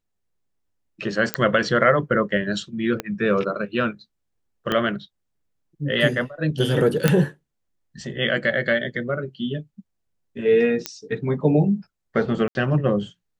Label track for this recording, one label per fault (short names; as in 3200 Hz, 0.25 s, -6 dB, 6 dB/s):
1.340000	1.340000	pop -4 dBFS
3.000000	3.000000	pop -11 dBFS
4.720000	4.720000	pop -10 dBFS
7.080000	7.080000	pop -3 dBFS
10.860000	10.860000	pop -8 dBFS
12.480000	12.550000	gap 71 ms